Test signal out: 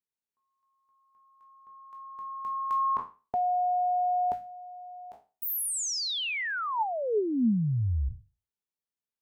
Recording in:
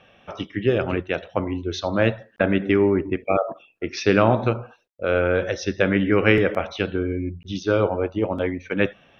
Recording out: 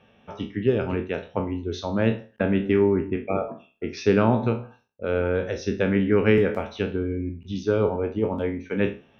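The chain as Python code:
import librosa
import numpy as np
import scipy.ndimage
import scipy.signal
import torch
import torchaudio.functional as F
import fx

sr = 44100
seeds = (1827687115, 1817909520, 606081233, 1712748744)

y = fx.spec_trails(x, sr, decay_s=0.32)
y = fx.peak_eq(y, sr, hz=92.0, db=6.0, octaves=2.5)
y = fx.small_body(y, sr, hz=(230.0, 420.0, 890.0), ring_ms=45, db=8)
y = y * 10.0 ** (-8.0 / 20.0)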